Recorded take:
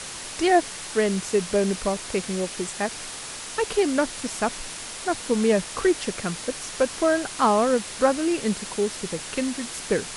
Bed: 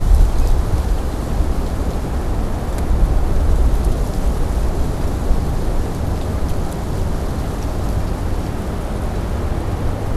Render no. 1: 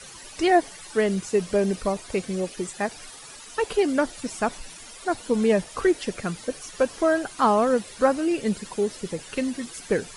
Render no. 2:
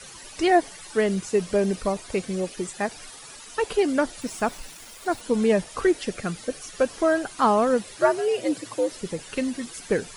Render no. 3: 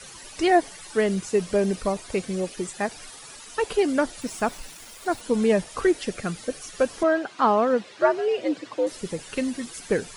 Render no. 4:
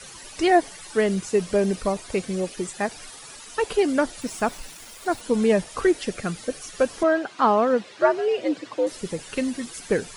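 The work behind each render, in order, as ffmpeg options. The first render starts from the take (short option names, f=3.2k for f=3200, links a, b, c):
-af "afftdn=nr=13:nf=-36"
-filter_complex "[0:a]asettb=1/sr,asplit=3[a][b][c];[a]atrim=end=4.214[d];[b]atrim=start=4.21:end=5.21,asetpts=PTS-STARTPTS,afade=t=in:d=0.004:c=qsin,afade=t=out:st=0.996:d=0.004:c=qsin,aeval=exprs='val(0)*gte(abs(val(0)),0.00708)':c=same[e];[c]atrim=start=5.206[f];[d][e]acrossfade=d=0.004:c1=hsin:c2=qsin[g];[g][f]acrossfade=d=0.004:c1=qsin:c2=hsin,asettb=1/sr,asplit=3[h][i][j];[h]atrim=end=6.004[k];[i]atrim=start=6:end=6.9,asetpts=PTS-STARTPTS,afade=t=in:d=0.004:c=qsin,afade=t=out:st=0.896:d=0.004:c=qsin,bandreject=f=960:w=7.9[l];[j]atrim=start=6.896[m];[k][l]acrossfade=d=0.004:c1=hsin:c2=qsin[n];[n][m]acrossfade=d=0.004:c1=qsin:c2=hsin,asettb=1/sr,asplit=3[o][p][q];[o]atrim=end=7.974[r];[p]atrim=start=7.97:end=8.91,asetpts=PTS-STARTPTS,afade=t=in:d=0.004:c=qsin,afade=t=out:st=0.936:d=0.004:c=qsin,afreqshift=98[s];[q]atrim=start=8.906[t];[r][s]acrossfade=d=0.004:c1=hsin:c2=qsin[u];[u][t]acrossfade=d=0.004:c1=qsin:c2=hsin"
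-filter_complex "[0:a]asettb=1/sr,asplit=3[a][b][c];[a]atrim=end=7.034[d];[b]atrim=start=7.03:end=8.87,asetpts=PTS-STARTPTS,afade=t=in:d=0.004:c=qsin,afade=t=out:st=1.836:d=0.004:c=qsin,highpass=190,lowpass=4.1k[e];[c]atrim=start=8.866[f];[d][e]acrossfade=d=0.004:c1=hsin:c2=qsin[g];[g][f]acrossfade=d=0.004:c1=qsin:c2=hsin"
-af "volume=1dB"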